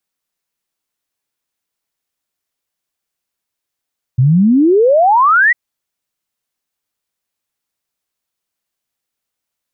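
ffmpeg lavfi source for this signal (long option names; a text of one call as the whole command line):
ffmpeg -f lavfi -i "aevalsrc='0.473*clip(min(t,1.35-t)/0.01,0,1)*sin(2*PI*120*1.35/log(2000/120)*(exp(log(2000/120)*t/1.35)-1))':duration=1.35:sample_rate=44100" out.wav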